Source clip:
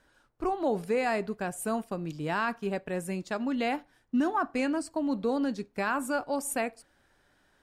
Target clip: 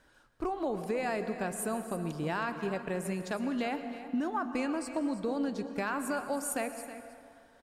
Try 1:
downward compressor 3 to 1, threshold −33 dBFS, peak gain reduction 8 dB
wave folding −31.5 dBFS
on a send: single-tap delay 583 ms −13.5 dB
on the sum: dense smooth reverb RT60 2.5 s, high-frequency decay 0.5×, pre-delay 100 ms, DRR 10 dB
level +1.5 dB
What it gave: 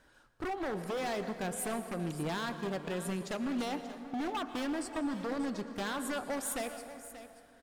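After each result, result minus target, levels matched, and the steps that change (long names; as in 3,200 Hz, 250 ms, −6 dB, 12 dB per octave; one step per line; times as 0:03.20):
wave folding: distortion +31 dB; echo 263 ms late
change: wave folding −25 dBFS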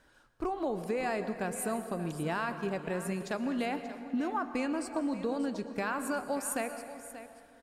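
echo 263 ms late
change: single-tap delay 320 ms −13.5 dB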